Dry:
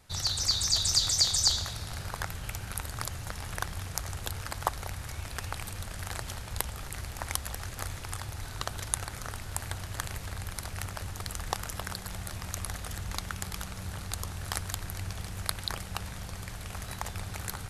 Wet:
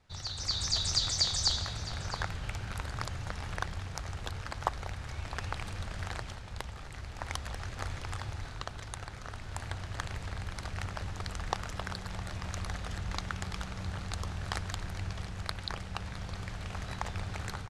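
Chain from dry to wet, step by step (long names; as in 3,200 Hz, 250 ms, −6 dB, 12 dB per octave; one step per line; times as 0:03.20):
automatic gain control gain up to 7.5 dB
high-frequency loss of the air 97 metres
single-tap delay 661 ms −15.5 dB
level −6.5 dB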